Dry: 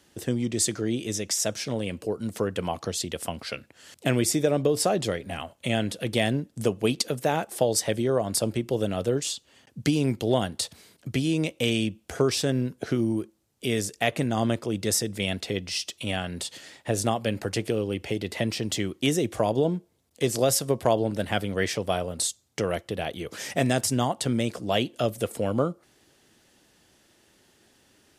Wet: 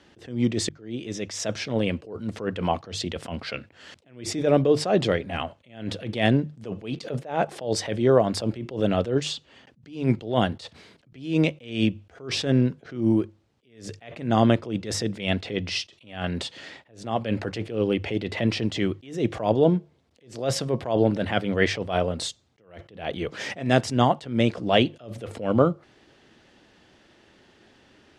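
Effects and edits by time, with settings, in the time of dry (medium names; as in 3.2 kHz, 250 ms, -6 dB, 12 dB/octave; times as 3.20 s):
0.69–1.40 s: fade in linear
7.04–7.50 s: peaking EQ 590 Hz +6 dB 1.1 oct
whole clip: low-pass 3.6 kHz 12 dB/octave; hum notches 50/100/150 Hz; attacks held to a fixed rise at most 130 dB/s; trim +6.5 dB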